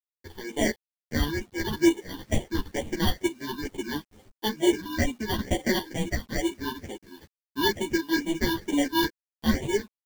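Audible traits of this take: aliases and images of a low sample rate 1300 Hz, jitter 0%; phasing stages 6, 2.2 Hz, lowest notch 580–1400 Hz; a quantiser's noise floor 10-bit, dither none; a shimmering, thickened sound

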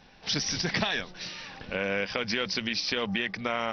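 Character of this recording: noise floor -55 dBFS; spectral tilt -3.0 dB/oct

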